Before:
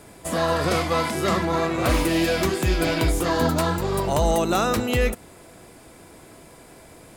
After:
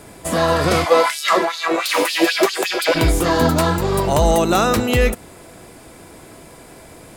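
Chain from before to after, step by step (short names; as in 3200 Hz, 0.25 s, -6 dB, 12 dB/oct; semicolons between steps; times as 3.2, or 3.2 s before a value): 0.84–2.94 LFO high-pass sine 1.8 Hz -> 7.7 Hz 390–4400 Hz; gain +5.5 dB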